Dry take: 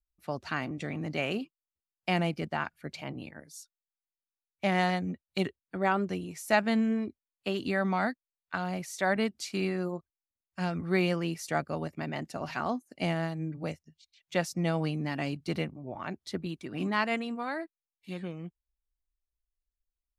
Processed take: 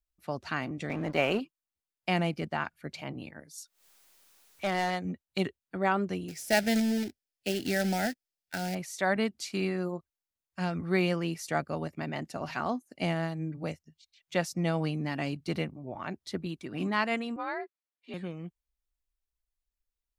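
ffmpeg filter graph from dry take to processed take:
-filter_complex "[0:a]asettb=1/sr,asplit=3[a][b][c];[a]atrim=end=0.894[d];[b]atrim=start=0.89:end=1.4,asetpts=PTS-STARTPTS,afade=t=in:d=0.004:c=qsin,afade=t=out:st=0.506:d=0.004:c=qsin,aeval=exprs='sgn(val(0))*max(abs(val(0))-0.00398,0)':c=same,equalizer=f=830:w=0.39:g=8[e];[c]atrim=start=1.396[f];[d][e]acrossfade=d=0.004:c1=hsin:c2=qsin[g];[g][f]acrossfade=d=0.004:c1=qsin:c2=hsin,asettb=1/sr,asplit=3[h][i][j];[h]atrim=end=3.584[k];[i]atrim=start=3.58:end=5.05,asetpts=PTS-STARTPTS,afade=t=in:d=0.004:c=qsin,afade=t=out:st=1.466:d=0.004:c=qsin,bass=f=250:g=-7,treble=f=4k:g=1,acompressor=mode=upward:threshold=-37dB:ratio=2.5:attack=3.2:release=140:knee=2.83:detection=peak,asoftclip=type=hard:threshold=-24dB[l];[j]atrim=start=5.046[m];[k][l]acrossfade=d=0.004:c1=hsin:c2=qsin[n];[n][m]acrossfade=d=0.004:c1=qsin:c2=hsin,asettb=1/sr,asplit=3[o][p][q];[o]atrim=end=6.284[r];[p]atrim=start=6.28:end=8.75,asetpts=PTS-STARTPTS,afade=t=in:d=0.004:c=qsin,afade=t=out:st=2.466:d=0.004:c=qsin,acrusher=bits=2:mode=log:mix=0:aa=0.000001,asuperstop=centerf=1100:order=4:qfactor=1.6,equalizer=f=5.1k:t=o:w=0.25:g=6.5[s];[q]atrim=start=8.746[t];[r][s]acrossfade=d=0.004:c1=hsin:c2=qsin[u];[u][t]acrossfade=d=0.004:c1=qsin:c2=hsin,asettb=1/sr,asplit=3[v][w][x];[v]atrim=end=17.364[y];[w]atrim=start=17.36:end=18.14,asetpts=PTS-STARTPTS,afade=t=in:d=0.004:c=qsin,afade=t=out:st=0.776:d=0.004:c=qsin,afreqshift=50,highpass=290,lowpass=3.7k[z];[x]atrim=start=18.136[aa];[y][z]acrossfade=d=0.004:c1=hsin:c2=qsin[ab];[ab][aa]acrossfade=d=0.004:c1=qsin:c2=hsin"

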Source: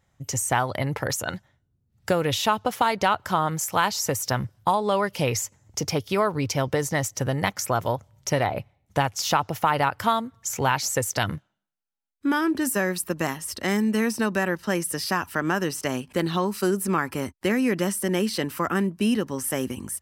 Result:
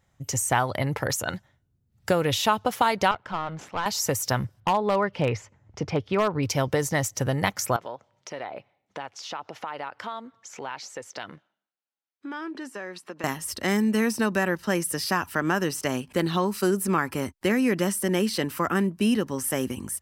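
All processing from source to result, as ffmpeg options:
-filter_complex "[0:a]asettb=1/sr,asplit=3[a][b][c];[a]atrim=end=3.114[d];[b]atrim=start=3.11:end=3.86,asetpts=PTS-STARTPTS,afade=t=in:d=0.004:c=qsin,afade=t=out:st=0.746:d=0.004:c=qsin,aeval=exprs='if(lt(val(0),0),0.251*val(0),val(0))':c=same,highpass=120,lowpass=3k,aeval=exprs='(tanh(7.08*val(0)+0.35)-tanh(0.35))/7.08':c=same[e];[c]atrim=start=3.856[f];[d][e]acrossfade=d=0.004:c1=hsin:c2=qsin[g];[g][f]acrossfade=d=0.004:c1=qsin:c2=hsin,asettb=1/sr,asplit=3[h][i][j];[h]atrim=end=4.604[k];[i]atrim=start=4.6:end=6.43,asetpts=PTS-STARTPTS,afade=t=in:d=0.004:c=qsin,afade=t=out:st=1.826:d=0.004:c=qsin,lowpass=2.5k,aeval=exprs='0.188*(abs(mod(val(0)/0.188+3,4)-2)-1)':c=same[l];[j]atrim=start=6.426[m];[k][l]acrossfade=d=0.004:c1=hsin:c2=qsin[n];[n][m]acrossfade=d=0.004:c1=qsin:c2=hsin,asettb=1/sr,asplit=3[o][p][q];[o]atrim=end=7.764[r];[p]atrim=start=7.76:end=13.24,asetpts=PTS-STARTPTS,afade=t=in:d=0.004:c=qsin,afade=t=out:st=5.476:d=0.004:c=qsin,acompressor=threshold=-33dB:ratio=3:attack=3.2:release=140:knee=1:detection=peak,highpass=300,lowpass=4.5k[s];[q]atrim=start=13.236[t];[r][s]acrossfade=d=0.004:c1=hsin:c2=qsin[u];[u][t]acrossfade=d=0.004:c1=qsin:c2=hsin"

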